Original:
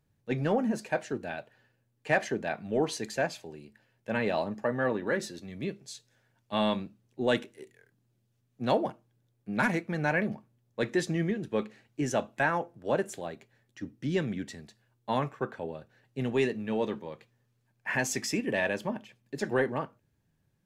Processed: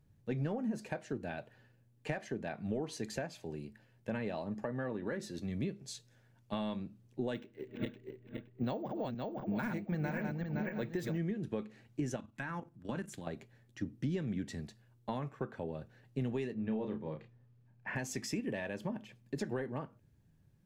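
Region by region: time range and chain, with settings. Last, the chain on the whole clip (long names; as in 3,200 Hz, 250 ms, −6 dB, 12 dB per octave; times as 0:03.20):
0:07.34–0:11.18: feedback delay that plays each chunk backwards 258 ms, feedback 52%, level −3 dB + low-pass that shuts in the quiet parts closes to 2,100 Hz, open at −23.5 dBFS + bad sample-rate conversion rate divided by 2×, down none, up hold
0:12.16–0:13.27: flat-topped bell 540 Hz −9.5 dB 1.3 octaves + mains-hum notches 50/100/150 Hz + output level in coarse steps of 12 dB
0:16.54–0:17.96: head-to-tape spacing loss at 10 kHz 20 dB + double-tracking delay 32 ms −5.5 dB
whole clip: downward compressor 6 to 1, threshold −37 dBFS; low-shelf EQ 300 Hz +9.5 dB; level −1.5 dB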